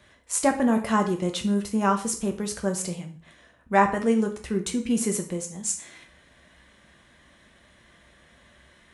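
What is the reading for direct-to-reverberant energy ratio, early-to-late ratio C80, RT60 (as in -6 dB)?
4.0 dB, 15.5 dB, 0.40 s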